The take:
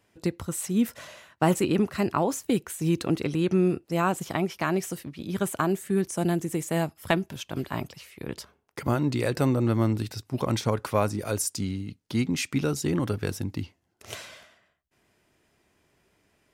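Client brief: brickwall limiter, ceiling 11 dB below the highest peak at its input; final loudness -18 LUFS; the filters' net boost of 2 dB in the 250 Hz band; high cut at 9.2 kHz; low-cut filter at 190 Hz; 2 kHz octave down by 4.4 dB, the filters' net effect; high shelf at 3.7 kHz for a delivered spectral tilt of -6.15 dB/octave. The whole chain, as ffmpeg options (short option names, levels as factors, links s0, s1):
-af "highpass=190,lowpass=9200,equalizer=f=250:t=o:g=5,equalizer=f=2000:t=o:g=-4.5,highshelf=f=3700:g=-5,volume=3.98,alimiter=limit=0.473:level=0:latency=1"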